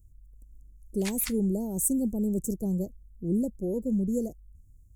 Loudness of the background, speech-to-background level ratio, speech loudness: −40.5 LKFS, 11.0 dB, −29.5 LKFS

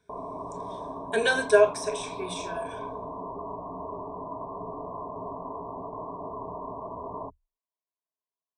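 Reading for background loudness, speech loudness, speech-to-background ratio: −37.5 LKFS, −25.5 LKFS, 12.0 dB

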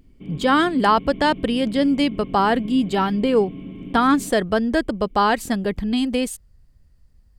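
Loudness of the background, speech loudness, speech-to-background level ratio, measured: −36.5 LKFS, −20.5 LKFS, 16.0 dB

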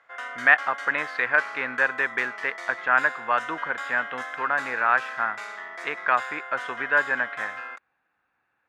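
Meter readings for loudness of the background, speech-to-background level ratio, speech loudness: −35.0 LKFS, 10.5 dB, −24.5 LKFS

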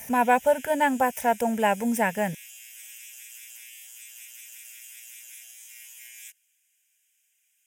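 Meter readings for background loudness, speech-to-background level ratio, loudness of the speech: −43.0 LKFS, 19.0 dB, −24.0 LKFS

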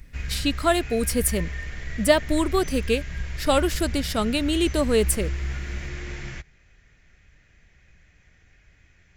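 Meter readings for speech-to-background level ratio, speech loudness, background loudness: 9.0 dB, −24.0 LKFS, −33.0 LKFS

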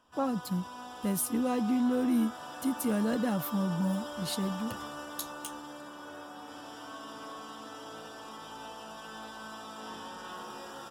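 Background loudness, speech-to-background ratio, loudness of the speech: −43.0 LKFS, 11.5 dB, −31.5 LKFS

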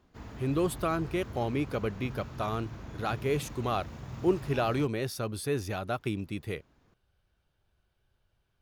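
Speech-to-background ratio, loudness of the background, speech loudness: 11.0 dB, −43.5 LKFS, −32.5 LKFS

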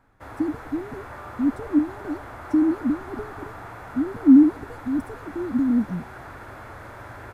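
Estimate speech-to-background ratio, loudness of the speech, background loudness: 17.0 dB, −22.5 LKFS, −39.5 LKFS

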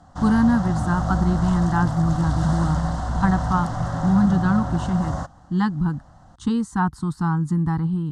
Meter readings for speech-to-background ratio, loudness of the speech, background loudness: 4.0 dB, −22.5 LKFS, −26.5 LKFS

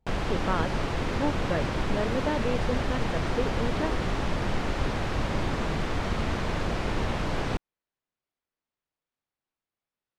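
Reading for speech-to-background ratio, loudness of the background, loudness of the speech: −3.0 dB, −30.0 LKFS, −33.0 LKFS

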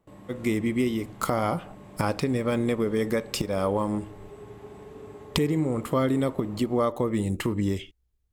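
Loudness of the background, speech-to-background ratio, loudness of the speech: −46.0 LKFS, 19.0 dB, −27.0 LKFS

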